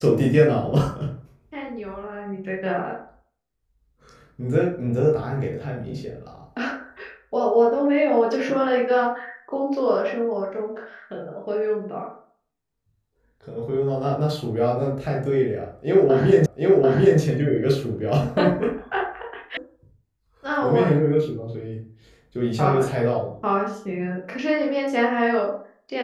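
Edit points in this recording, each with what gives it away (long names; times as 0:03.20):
0:16.46: the same again, the last 0.74 s
0:19.57: cut off before it has died away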